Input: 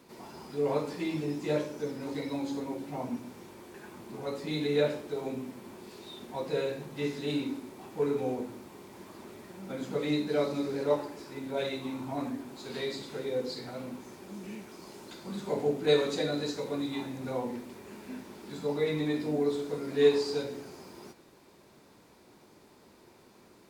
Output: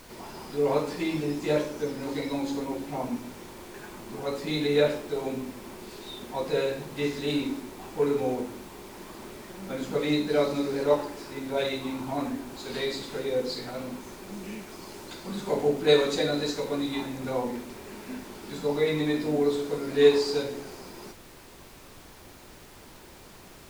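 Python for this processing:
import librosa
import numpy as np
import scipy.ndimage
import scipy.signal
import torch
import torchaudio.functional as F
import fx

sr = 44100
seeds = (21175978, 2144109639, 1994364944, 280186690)

y = fx.low_shelf(x, sr, hz=330.0, db=-3.5)
y = fx.dmg_noise_colour(y, sr, seeds[0], colour='pink', level_db=-56.0)
y = F.gain(torch.from_numpy(y), 5.5).numpy()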